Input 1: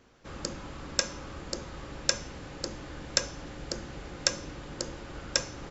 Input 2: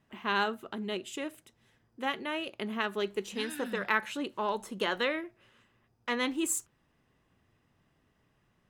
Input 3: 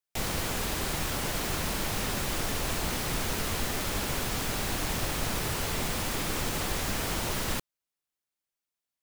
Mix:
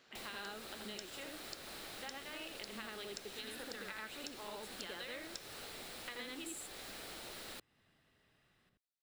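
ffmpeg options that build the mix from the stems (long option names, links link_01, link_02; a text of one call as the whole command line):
ffmpeg -i stem1.wav -i stem2.wav -i stem3.wav -filter_complex "[0:a]volume=0dB[link_01];[1:a]volume=2.5dB,asplit=2[link_02][link_03];[link_03]volume=-8.5dB[link_04];[2:a]acrossover=split=260[link_05][link_06];[link_05]acompressor=threshold=-53dB:ratio=2.5[link_07];[link_07][link_06]amix=inputs=2:normalize=0,volume=-9dB[link_08];[link_01][link_02]amix=inputs=2:normalize=0,highpass=frequency=1100:poles=1,acompressor=threshold=-32dB:ratio=6,volume=0dB[link_09];[link_04]aecho=0:1:81:1[link_10];[link_08][link_09][link_10]amix=inputs=3:normalize=0,equalizer=frequency=1000:width_type=o:width=0.33:gain=-7,equalizer=frequency=4000:width_type=o:width=0.33:gain=6,equalizer=frequency=6300:width_type=o:width=0.33:gain=-5,equalizer=frequency=16000:width_type=o:width=0.33:gain=-7,acompressor=threshold=-49dB:ratio=2.5" out.wav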